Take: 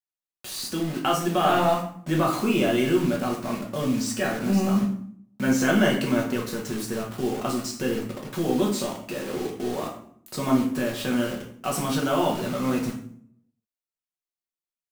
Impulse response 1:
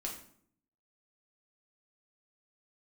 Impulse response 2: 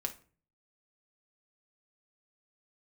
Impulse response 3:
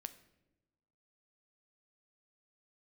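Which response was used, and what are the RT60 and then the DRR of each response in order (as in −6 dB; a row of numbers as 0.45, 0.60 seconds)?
1; 0.60 s, non-exponential decay, non-exponential decay; −1.5, 3.5, 10.5 decibels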